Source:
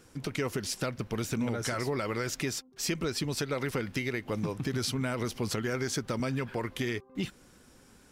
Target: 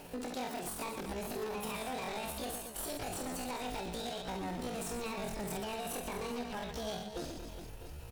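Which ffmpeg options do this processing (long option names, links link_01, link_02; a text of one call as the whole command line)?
ffmpeg -i in.wav -filter_complex "[0:a]asubboost=boost=6:cutoff=64,asplit=2[link_01][link_02];[link_02]acrusher=samples=35:mix=1:aa=0.000001,volume=-7dB[link_03];[link_01][link_03]amix=inputs=2:normalize=0,bandreject=frequency=60:width_type=h:width=6,bandreject=frequency=120:width_type=h:width=6,bandreject=frequency=180:width_type=h:width=6,alimiter=limit=-23.5dB:level=0:latency=1:release=168,aeval=exprs='0.0376*(abs(mod(val(0)/0.0376+3,4)-2)-1)':channel_layout=same,highshelf=frequency=10000:gain=-3.5,aecho=1:1:50|125|237.5|406.2|659.4:0.631|0.398|0.251|0.158|0.1,acompressor=threshold=-53dB:ratio=2,asetrate=78577,aresample=44100,atempo=0.561231,volume=6.5dB" -ar 44100 -c:a libvorbis -b:a 192k out.ogg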